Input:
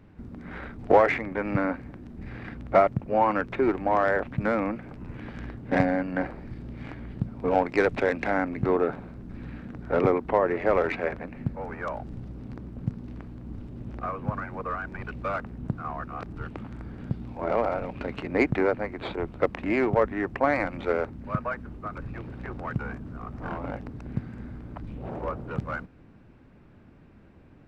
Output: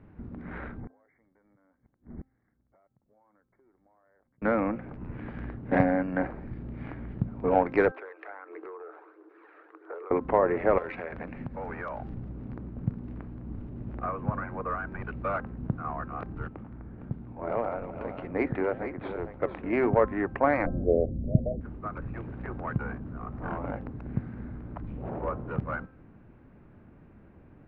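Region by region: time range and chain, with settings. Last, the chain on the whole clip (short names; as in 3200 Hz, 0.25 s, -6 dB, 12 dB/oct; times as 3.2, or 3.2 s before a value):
0.8–4.42 compressor 12:1, threshold -26 dBFS + flipped gate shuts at -32 dBFS, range -35 dB + brick-wall FIR low-pass 2300 Hz
7.91–10.11 rippled Chebyshev high-pass 310 Hz, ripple 9 dB + compressor, threshold -39 dBFS + phaser 1.5 Hz, delay 1.7 ms, feedback 41%
10.78–12.14 high shelf 2100 Hz +9 dB + compressor, threshold -31 dBFS
16.48–19.73 echo 0.459 s -10 dB + flange 1.7 Hz, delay 6.4 ms, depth 9.9 ms, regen -90% + mismatched tape noise reduction decoder only
20.66–21.61 steep low-pass 710 Hz 96 dB/oct + tilt -2.5 dB/oct
whole clip: LPF 2000 Hz 12 dB/oct; de-hum 262 Hz, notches 6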